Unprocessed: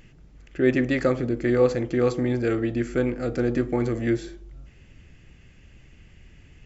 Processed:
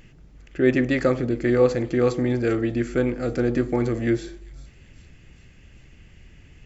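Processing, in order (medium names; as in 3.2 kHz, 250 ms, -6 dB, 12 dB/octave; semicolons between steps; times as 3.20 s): feedback echo behind a high-pass 395 ms, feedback 65%, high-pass 3.9 kHz, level -14.5 dB; trim +1.5 dB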